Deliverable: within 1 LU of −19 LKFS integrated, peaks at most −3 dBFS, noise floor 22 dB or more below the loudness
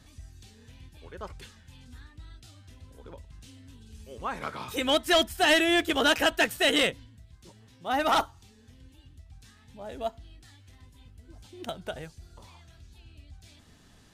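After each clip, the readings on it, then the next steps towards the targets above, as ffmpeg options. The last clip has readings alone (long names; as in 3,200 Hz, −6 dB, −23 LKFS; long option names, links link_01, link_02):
integrated loudness −26.0 LKFS; sample peak −15.5 dBFS; target loudness −19.0 LKFS
→ -af "volume=7dB"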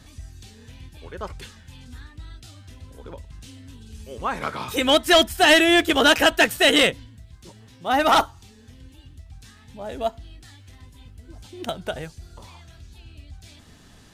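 integrated loudness −19.0 LKFS; sample peak −8.5 dBFS; background noise floor −50 dBFS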